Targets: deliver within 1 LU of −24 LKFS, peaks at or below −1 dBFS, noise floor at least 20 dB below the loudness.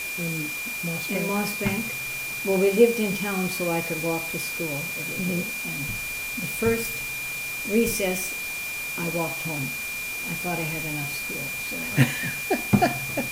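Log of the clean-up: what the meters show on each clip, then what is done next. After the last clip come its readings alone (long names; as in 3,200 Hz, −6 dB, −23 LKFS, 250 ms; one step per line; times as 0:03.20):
interfering tone 2,400 Hz; level of the tone −30 dBFS; background noise floor −32 dBFS; target noise floor −46 dBFS; integrated loudness −25.5 LKFS; sample peak −4.5 dBFS; target loudness −24.0 LKFS
→ notch filter 2,400 Hz, Q 30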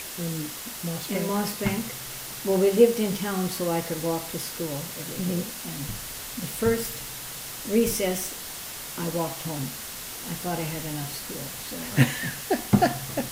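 interfering tone none found; background noise floor −37 dBFS; target noise floor −48 dBFS
→ noise reduction from a noise print 11 dB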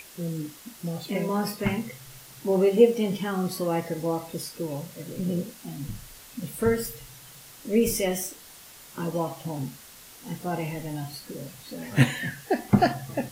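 background noise floor −48 dBFS; integrated loudness −27.5 LKFS; sample peak −5.0 dBFS; target loudness −24.0 LKFS
→ level +3.5 dB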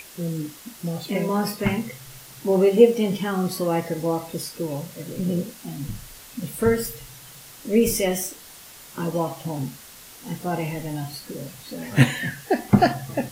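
integrated loudness −24.0 LKFS; sample peak −1.5 dBFS; background noise floor −45 dBFS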